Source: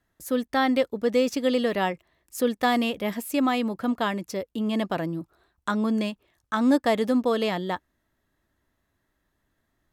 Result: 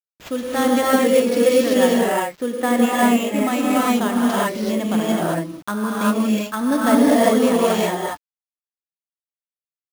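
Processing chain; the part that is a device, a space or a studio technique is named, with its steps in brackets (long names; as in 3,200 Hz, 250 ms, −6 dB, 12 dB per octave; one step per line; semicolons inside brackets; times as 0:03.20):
0:01.74–0:03.39: Chebyshev band-pass filter 170–2,600 Hz, order 2
reverb whose tail is shaped and stops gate 410 ms rising, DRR −6.5 dB
early 8-bit sampler (sample-rate reduction 10,000 Hz, jitter 0%; bit reduction 8 bits)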